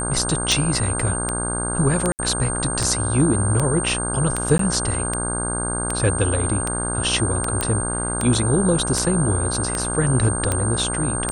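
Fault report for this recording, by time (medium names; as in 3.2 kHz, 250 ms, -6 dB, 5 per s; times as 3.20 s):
buzz 60 Hz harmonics 27 -27 dBFS
tick 78 rpm
whine 8.7 kHz -25 dBFS
2.12–2.19 s: dropout 69 ms
4.58–4.59 s: dropout 13 ms
7.61 s: pop -6 dBFS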